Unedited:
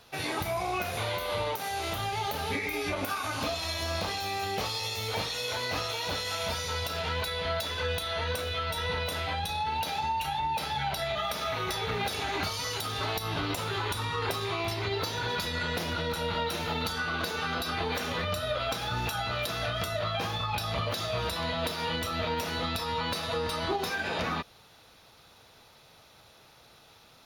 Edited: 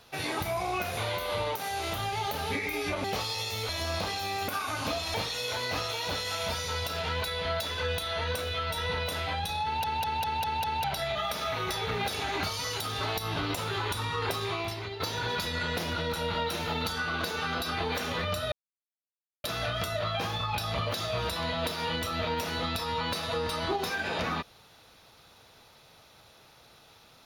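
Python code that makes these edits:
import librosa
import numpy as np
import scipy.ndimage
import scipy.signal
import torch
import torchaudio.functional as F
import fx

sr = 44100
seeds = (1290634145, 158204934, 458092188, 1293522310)

y = fx.edit(x, sr, fx.swap(start_s=3.04, length_s=0.66, other_s=4.49, other_length_s=0.65),
    fx.stutter_over(start_s=9.64, slice_s=0.2, count=6),
    fx.fade_out_to(start_s=14.49, length_s=0.51, floor_db=-10.0),
    fx.silence(start_s=18.52, length_s=0.92), tone=tone)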